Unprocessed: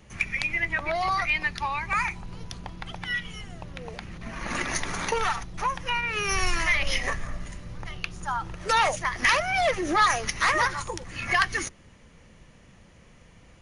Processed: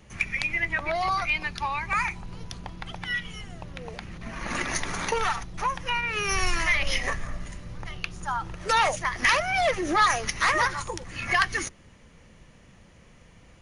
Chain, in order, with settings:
0:01.09–0:01.59: notch filter 1,900 Hz, Q 6

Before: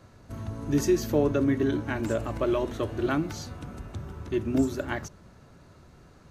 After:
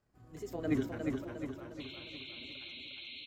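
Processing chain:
source passing by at 0:01.45, 27 m/s, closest 1.5 metres
in parallel at +2.5 dB: downward compressor, threshold −43 dBFS, peak gain reduction 17.5 dB
on the sum: time stretch by overlap-add 0.54×, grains 72 ms
sound drawn into the spectrogram noise, 0:01.87–0:03.70, 2,000–4,100 Hz −47 dBFS
on a send: repeating echo 371 ms, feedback 52%, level −4 dB
on the sum: wrong playback speed 24 fps film run at 25 fps
level −2.5 dB

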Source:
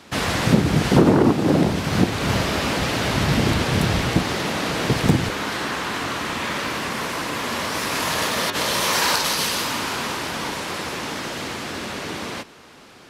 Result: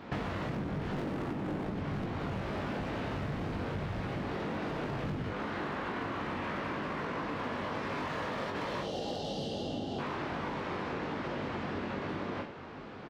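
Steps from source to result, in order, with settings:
in parallel at −10 dB: soft clipping −20.5 dBFS, distortion −8 dB
on the sum: high-shelf EQ 3,300 Hz −5 dB
gain on a spectral selection 0:08.82–0:09.99, 850–2,700 Hz −22 dB
head-to-tape spacing loss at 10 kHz 32 dB
hard clipping −22.5 dBFS, distortion −5 dB
on a send: reverse bouncing-ball delay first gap 20 ms, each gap 1.1×, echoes 5
on the sum: downward compressor 10 to 1, threshold −33 dBFS, peak gain reduction 14.5 dB

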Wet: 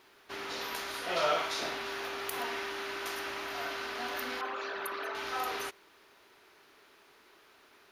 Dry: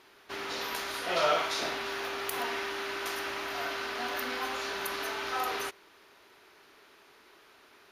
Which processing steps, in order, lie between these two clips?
0:04.41–0:05.15: spectral envelope exaggerated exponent 2
bit-depth reduction 12 bits, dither none
level −2.5 dB

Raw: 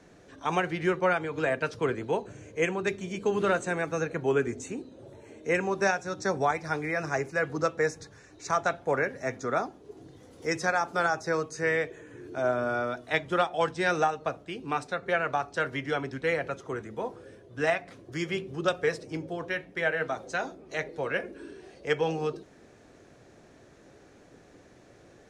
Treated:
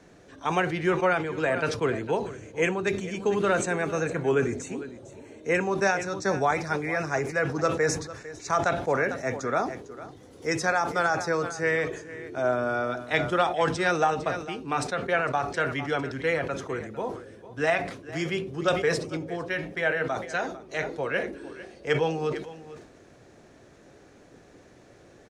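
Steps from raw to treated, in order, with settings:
single-tap delay 452 ms −16 dB
level that may fall only so fast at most 84 dB per second
level +1.5 dB

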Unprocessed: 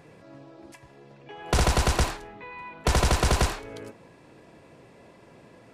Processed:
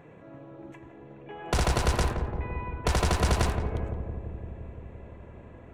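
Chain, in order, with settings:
adaptive Wiener filter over 9 samples
in parallel at −1.5 dB: downward compressor, threshold −35 dBFS, peak gain reduction 15.5 dB
on the sum: feedback echo with a low-pass in the loop 171 ms, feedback 81%, low-pass 890 Hz, level −5.5 dB
level −4.5 dB

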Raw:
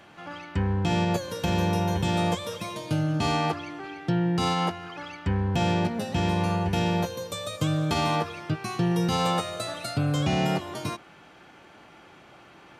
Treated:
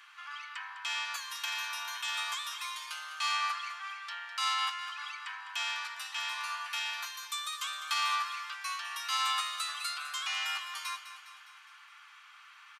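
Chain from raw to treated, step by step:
elliptic high-pass filter 1,100 Hz, stop band 60 dB
repeating echo 205 ms, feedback 56%, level −12 dB

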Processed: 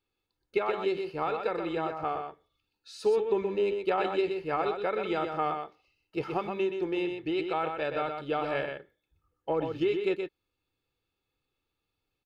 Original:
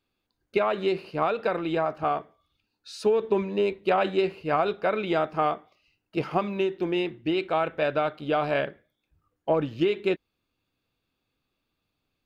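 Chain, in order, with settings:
comb filter 2.3 ms, depth 46%
single-tap delay 124 ms −6 dB
level −6 dB

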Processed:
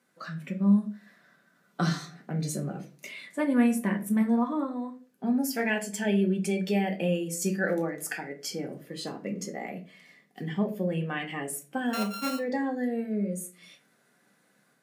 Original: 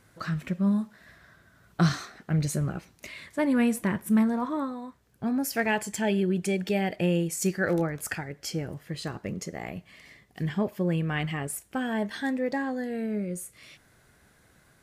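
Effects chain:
0:11.93–0:12.39: samples sorted by size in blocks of 32 samples
noise reduction from a noise print of the clip's start 7 dB
in parallel at −2.5 dB: downward compressor, threshold −36 dBFS, peak gain reduction 17 dB
on the sum: Chebyshev high-pass filter 170 Hz, order 4
automatic gain control gain up to 4 dB
on a send at −2 dB: convolution reverb RT60 0.35 s, pre-delay 4 ms
on the sum: every ending faded ahead of time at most 380 dB per second
level −8 dB

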